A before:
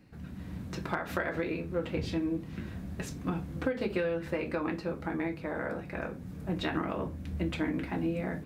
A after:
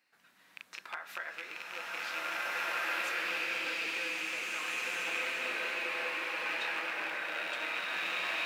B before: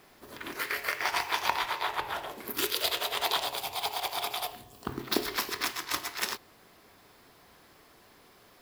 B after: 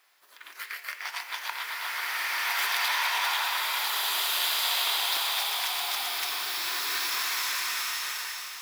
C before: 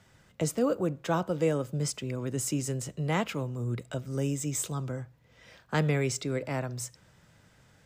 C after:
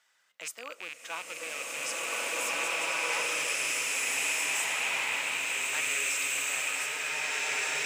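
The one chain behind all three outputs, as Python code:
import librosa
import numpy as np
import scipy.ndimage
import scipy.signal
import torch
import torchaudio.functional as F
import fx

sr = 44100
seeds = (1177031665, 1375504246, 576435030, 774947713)

y = fx.rattle_buzz(x, sr, strikes_db=-34.0, level_db=-23.0)
y = scipy.signal.sosfilt(scipy.signal.butter(2, 1200.0, 'highpass', fs=sr, output='sos'), y)
y = fx.rev_bloom(y, sr, seeds[0], attack_ms=1870, drr_db=-10.0)
y = y * 10.0 ** (-4.0 / 20.0)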